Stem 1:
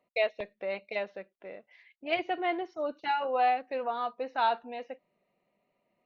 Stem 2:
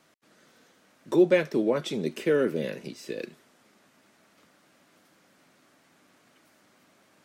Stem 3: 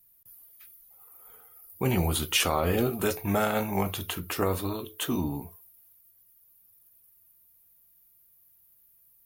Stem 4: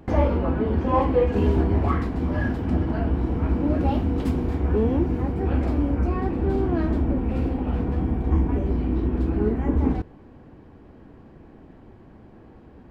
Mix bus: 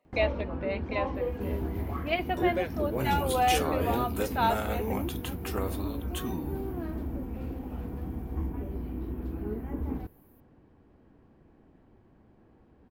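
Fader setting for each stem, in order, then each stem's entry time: +0.5, -9.5, -6.5, -12.0 dB; 0.00, 1.25, 1.15, 0.05 s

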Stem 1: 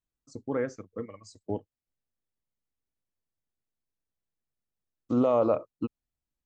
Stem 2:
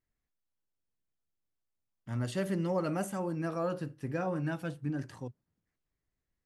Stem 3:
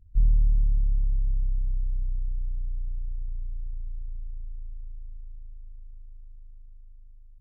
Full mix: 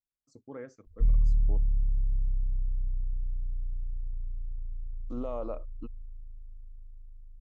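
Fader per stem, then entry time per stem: -12.5 dB, off, -2.5 dB; 0.00 s, off, 0.85 s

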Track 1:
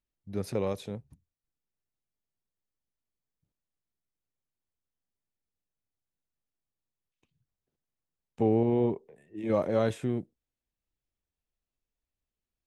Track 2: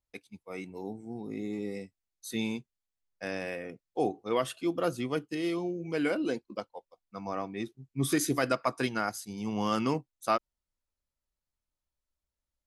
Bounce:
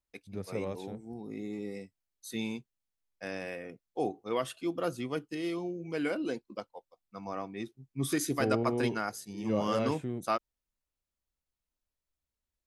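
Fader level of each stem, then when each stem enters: -6.0, -3.0 dB; 0.00, 0.00 s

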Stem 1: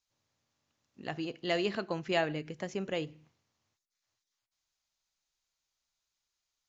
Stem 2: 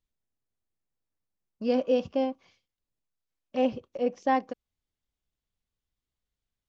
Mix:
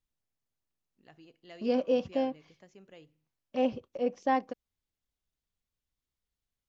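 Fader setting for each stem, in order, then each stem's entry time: -19.0, -2.5 dB; 0.00, 0.00 s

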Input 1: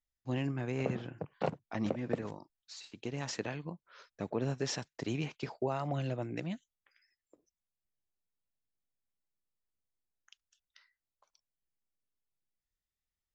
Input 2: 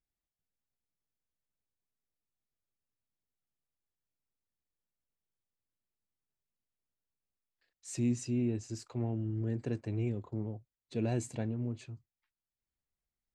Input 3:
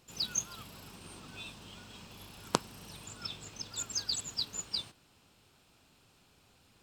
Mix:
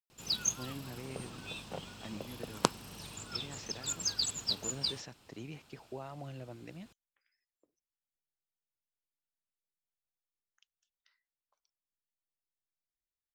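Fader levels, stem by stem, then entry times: -10.0 dB, off, +1.5 dB; 0.30 s, off, 0.10 s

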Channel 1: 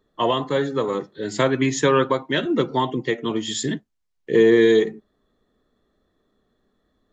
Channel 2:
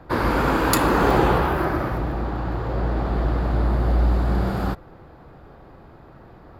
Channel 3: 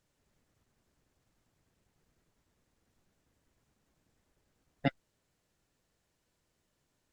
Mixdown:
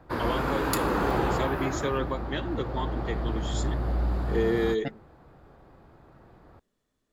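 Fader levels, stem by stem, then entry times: -11.5, -8.0, -4.5 dB; 0.00, 0.00, 0.00 s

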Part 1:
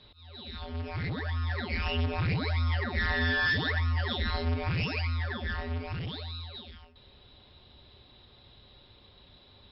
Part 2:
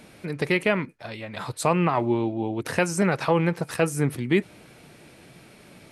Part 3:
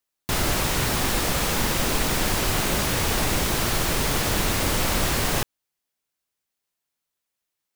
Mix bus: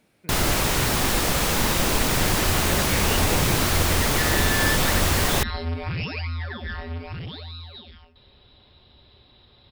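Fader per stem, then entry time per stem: +1.5, -15.0, +1.5 dB; 1.20, 0.00, 0.00 s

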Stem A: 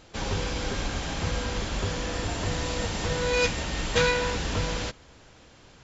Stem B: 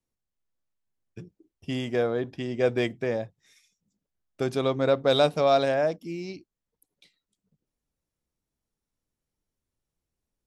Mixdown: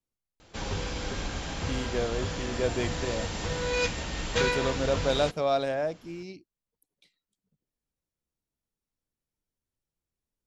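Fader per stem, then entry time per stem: -3.5, -5.0 dB; 0.40, 0.00 s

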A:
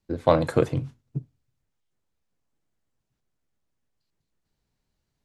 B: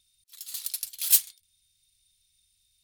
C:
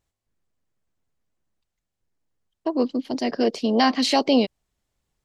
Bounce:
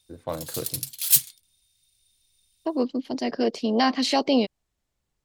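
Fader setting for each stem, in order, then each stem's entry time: -12.5, +2.0, -2.5 dB; 0.00, 0.00, 0.00 s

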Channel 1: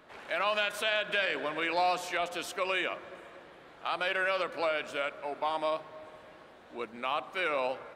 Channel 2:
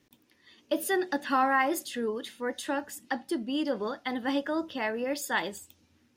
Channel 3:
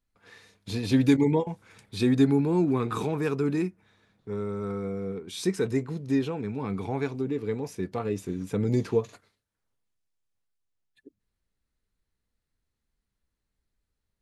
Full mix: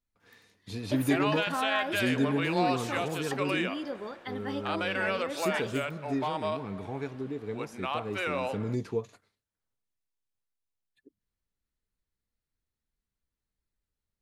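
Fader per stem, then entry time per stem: -1.0, -7.0, -6.5 dB; 0.80, 0.20, 0.00 s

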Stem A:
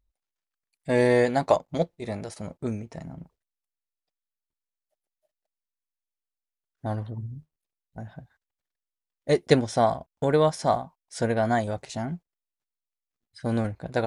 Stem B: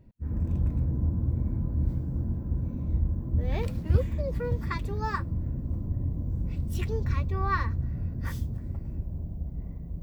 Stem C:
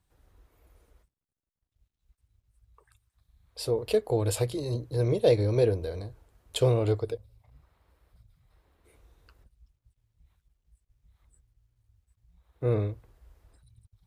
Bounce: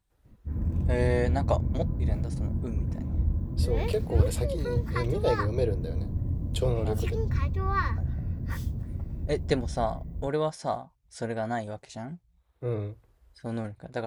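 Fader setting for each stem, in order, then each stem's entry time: -7.0, 0.0, -4.5 dB; 0.00, 0.25, 0.00 s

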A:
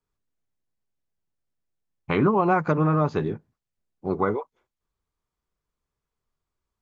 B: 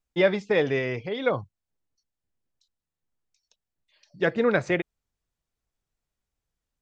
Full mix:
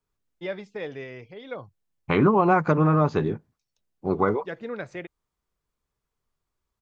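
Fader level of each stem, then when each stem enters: +1.5, -11.5 dB; 0.00, 0.25 s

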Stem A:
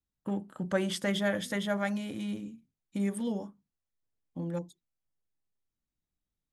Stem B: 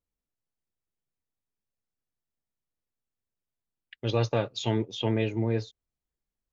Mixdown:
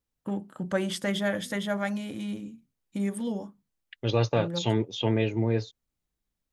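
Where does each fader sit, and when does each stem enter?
+1.5, +1.5 dB; 0.00, 0.00 s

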